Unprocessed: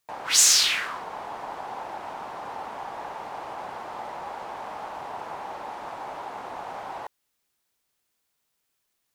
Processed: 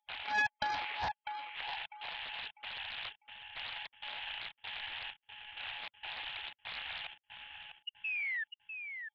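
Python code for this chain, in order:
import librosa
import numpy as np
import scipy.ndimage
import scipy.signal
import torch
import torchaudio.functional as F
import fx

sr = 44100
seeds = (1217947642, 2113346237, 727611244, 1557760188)

y = np.r_[np.sort(x[:len(x) // 16 * 16].reshape(-1, 16), axis=1).ravel(), x[len(x) // 16 * 16:]]
y = fx.small_body(y, sr, hz=(240.0, 400.0, 1300.0), ring_ms=30, db=7)
y = fx.spec_paint(y, sr, seeds[0], shape='rise', start_s=7.87, length_s=0.57, low_hz=710.0, high_hz=1900.0, level_db=-29.0)
y = fx.step_gate(y, sr, bpm=97, pattern='xxx.xxx...xx.', floor_db=-60.0, edge_ms=4.5)
y = fx.spec_gate(y, sr, threshold_db=-20, keep='strong')
y = fx.freq_invert(y, sr, carrier_hz=3600)
y = fx.echo_feedback(y, sr, ms=649, feedback_pct=30, wet_db=-7.5)
y = fx.doppler_dist(y, sr, depth_ms=0.74)
y = F.gain(torch.from_numpy(y), -7.0).numpy()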